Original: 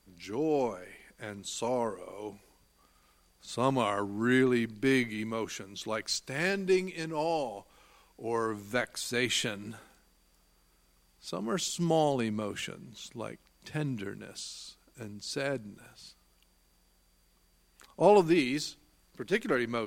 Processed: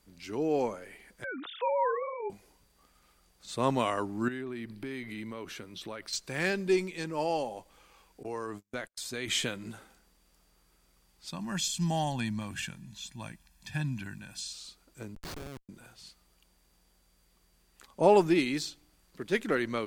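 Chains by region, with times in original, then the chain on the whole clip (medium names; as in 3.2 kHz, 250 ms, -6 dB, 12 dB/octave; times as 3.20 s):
1.24–2.30 s: formants replaced by sine waves + peaking EQ 1.3 kHz +14.5 dB 0.6 oct + decay stretcher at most 39 dB/s
4.28–6.13 s: compression 5:1, threshold -36 dBFS + peaking EQ 6.8 kHz -10.5 dB 0.4 oct
8.23–9.28 s: gate -41 dBFS, range -41 dB + compression 2:1, threshold -37 dBFS
11.31–14.53 s: peaking EQ 530 Hz -10 dB 1.5 oct + comb 1.2 ms, depth 76%
15.15–15.69 s: compression, threshold -34 dBFS + Schmitt trigger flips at -36.5 dBFS
whole clip: none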